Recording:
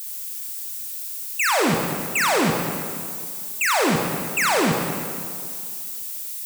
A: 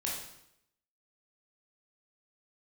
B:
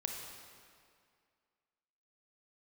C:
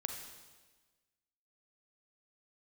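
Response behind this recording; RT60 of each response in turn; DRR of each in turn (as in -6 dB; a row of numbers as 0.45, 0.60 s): B; 0.80, 2.2, 1.3 s; -4.0, 1.5, 4.0 dB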